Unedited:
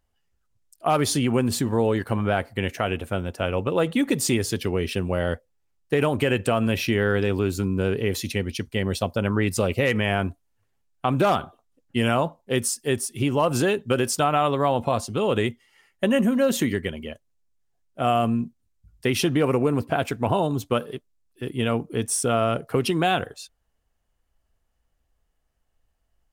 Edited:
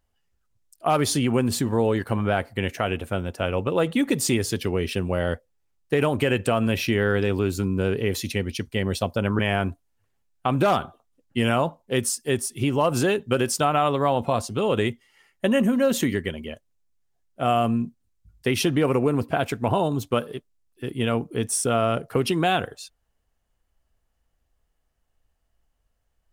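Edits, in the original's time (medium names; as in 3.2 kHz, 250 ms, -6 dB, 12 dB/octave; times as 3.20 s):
9.39–9.98 s: delete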